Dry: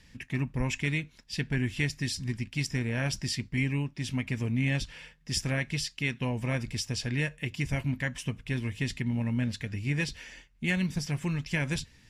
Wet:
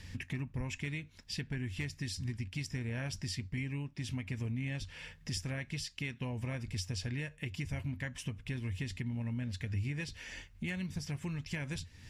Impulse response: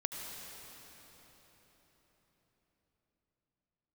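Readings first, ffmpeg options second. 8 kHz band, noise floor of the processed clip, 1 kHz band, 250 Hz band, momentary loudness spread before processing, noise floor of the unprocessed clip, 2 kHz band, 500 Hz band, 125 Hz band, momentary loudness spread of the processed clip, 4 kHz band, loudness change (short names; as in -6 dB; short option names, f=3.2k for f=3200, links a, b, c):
-7.5 dB, -59 dBFS, -9.5 dB, -8.5 dB, 5 LU, -59 dBFS, -9.5 dB, -9.5 dB, -6.5 dB, 4 LU, -7.5 dB, -8.0 dB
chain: -af "asoftclip=type=hard:threshold=-17dB,acompressor=threshold=-47dB:ratio=3,equalizer=f=90:t=o:w=0.34:g=14.5,volume=5.5dB"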